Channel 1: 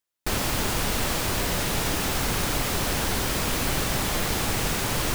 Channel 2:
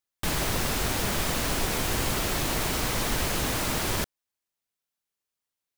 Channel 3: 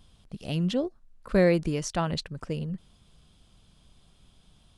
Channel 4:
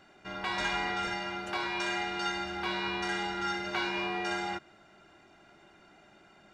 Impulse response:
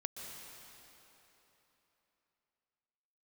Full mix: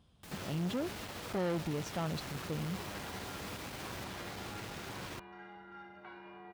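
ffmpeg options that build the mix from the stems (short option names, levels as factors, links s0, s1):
-filter_complex "[0:a]acrossover=split=5400[s0][s1];[s1]acompressor=threshold=0.0112:ratio=4:attack=1:release=60[s2];[s0][s2]amix=inputs=2:normalize=0,flanger=delay=9.5:depth=1.4:regen=71:speed=1.1:shape=triangular,adelay=50,volume=0.299[s3];[1:a]alimiter=limit=0.1:level=0:latency=1,volume=0.106[s4];[2:a]highshelf=f=2900:g=-10,volume=0.708[s5];[3:a]lowpass=1600,adelay=2300,volume=0.133,asplit=2[s6][s7];[s7]volume=0.501[s8];[4:a]atrim=start_sample=2205[s9];[s8][s9]afir=irnorm=-1:irlink=0[s10];[s3][s4][s5][s6][s10]amix=inputs=5:normalize=0,aeval=exprs='(tanh(35.5*val(0)+0.4)-tanh(0.4))/35.5':c=same,highpass=71"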